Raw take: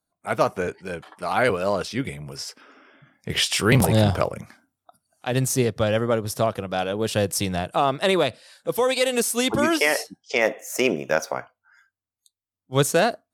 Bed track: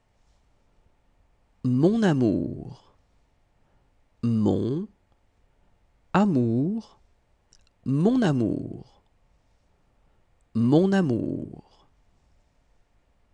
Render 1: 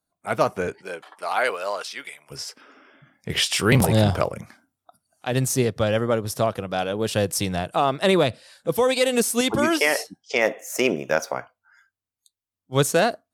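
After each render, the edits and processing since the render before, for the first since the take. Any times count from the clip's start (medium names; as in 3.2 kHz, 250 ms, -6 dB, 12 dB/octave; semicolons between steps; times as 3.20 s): 0.81–2.30 s: high-pass 330 Hz -> 1.2 kHz; 8.04–9.41 s: bass shelf 220 Hz +8.5 dB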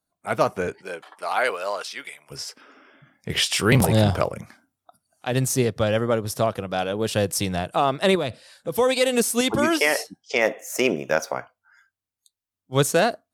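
8.15–8.78 s: compression 3:1, threshold -23 dBFS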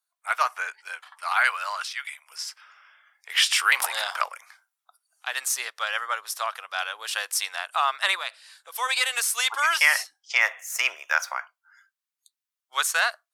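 high-pass 1 kHz 24 dB/octave; dynamic bell 1.5 kHz, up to +5 dB, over -38 dBFS, Q 0.86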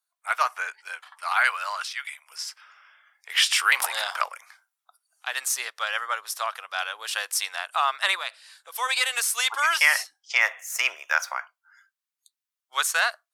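no audible change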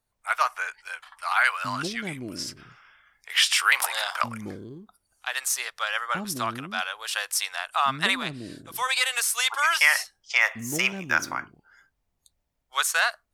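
add bed track -14.5 dB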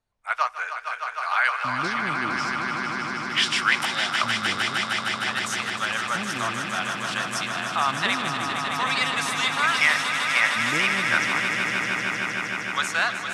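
distance through air 77 m; on a send: echo with a slow build-up 154 ms, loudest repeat 5, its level -8 dB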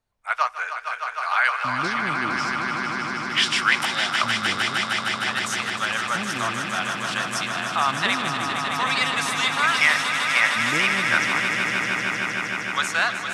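trim +1.5 dB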